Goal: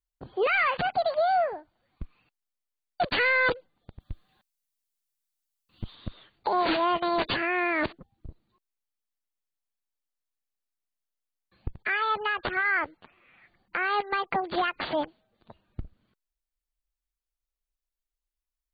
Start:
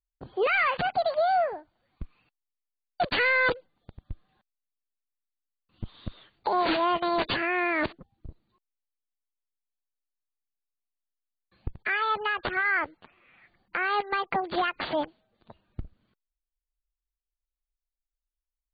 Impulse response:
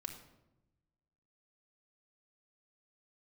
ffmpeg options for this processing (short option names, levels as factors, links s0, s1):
-filter_complex "[0:a]asettb=1/sr,asplit=3[s0][s1][s2];[s0]atrim=end=4.004[s3];[s1]atrim=start=4:end=5.95,asetpts=PTS-STARTPTS,afade=t=in:d=0.004:c=qsin,afade=t=out:st=1.946:d=0.004:c=qsin,highshelf=f=3200:g=11.5[s4];[s2]atrim=start=5.946[s5];[s3][s4]acrossfade=d=0.004:c1=hsin:c2=qsin[s6];[s6][s5]acrossfade=d=0.004:c1=qsin:c2=hsin"